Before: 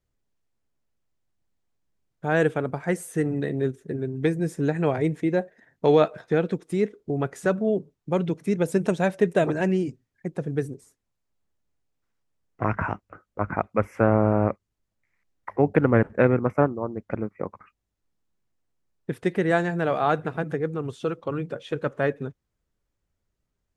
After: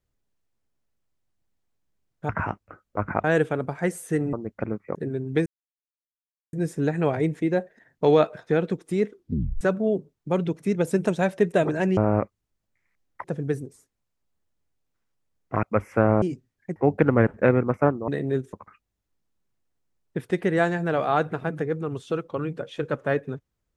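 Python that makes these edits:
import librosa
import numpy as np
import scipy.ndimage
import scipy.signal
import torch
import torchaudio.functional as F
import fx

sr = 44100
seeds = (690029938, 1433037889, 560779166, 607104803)

y = fx.edit(x, sr, fx.swap(start_s=3.38, length_s=0.45, other_s=16.84, other_length_s=0.62),
    fx.insert_silence(at_s=4.34, length_s=1.07),
    fx.tape_stop(start_s=6.95, length_s=0.47),
    fx.swap(start_s=9.78, length_s=0.54, other_s=14.25, other_length_s=1.27),
    fx.move(start_s=12.71, length_s=0.95, to_s=2.29), tone=tone)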